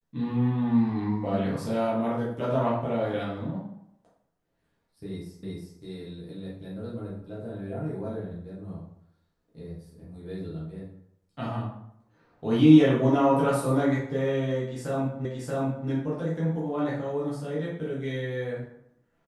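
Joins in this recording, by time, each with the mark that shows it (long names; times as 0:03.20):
0:05.43: the same again, the last 0.36 s
0:15.25: the same again, the last 0.63 s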